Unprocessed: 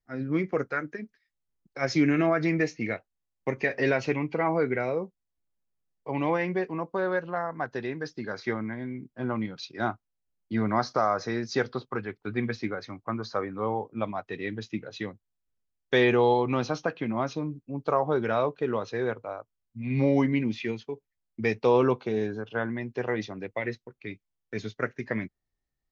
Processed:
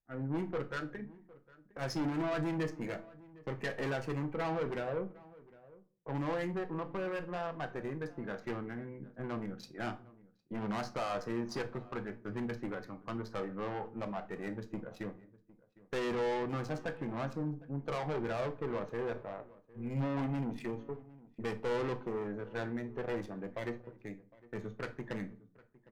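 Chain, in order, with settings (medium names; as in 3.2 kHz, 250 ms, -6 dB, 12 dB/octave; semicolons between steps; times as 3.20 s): local Wiener filter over 9 samples; high-order bell 3 kHz -8 dB 1.1 oct; valve stage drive 29 dB, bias 0.5; echo from a far wall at 130 m, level -21 dB; simulated room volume 290 m³, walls furnished, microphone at 0.7 m; trim -3.5 dB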